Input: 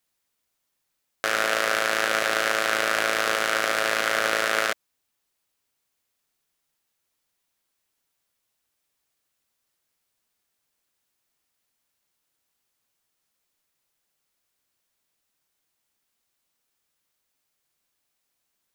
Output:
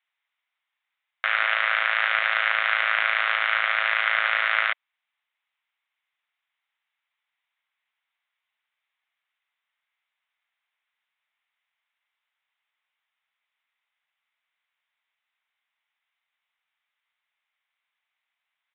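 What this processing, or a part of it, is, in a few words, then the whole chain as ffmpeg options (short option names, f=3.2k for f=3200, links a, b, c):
musical greeting card: -af "aresample=8000,aresample=44100,highpass=f=820:w=0.5412,highpass=f=820:w=1.3066,equalizer=f=2.1k:t=o:w=0.4:g=7"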